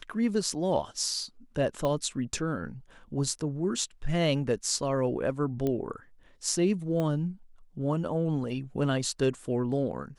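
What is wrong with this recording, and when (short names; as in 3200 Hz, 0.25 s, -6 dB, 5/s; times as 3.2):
1.85 pop -18 dBFS
5.67 pop -18 dBFS
7 pop -19 dBFS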